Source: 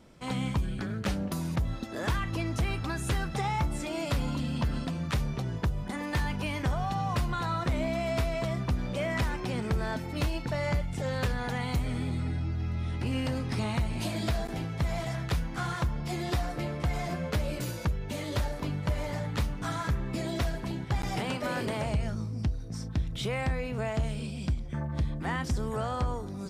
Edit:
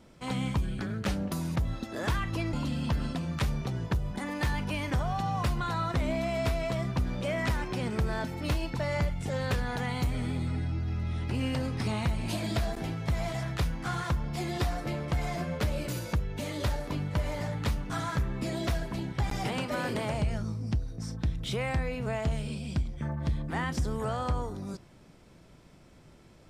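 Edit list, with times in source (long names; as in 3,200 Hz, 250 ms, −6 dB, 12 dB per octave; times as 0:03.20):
0:02.53–0:04.25: remove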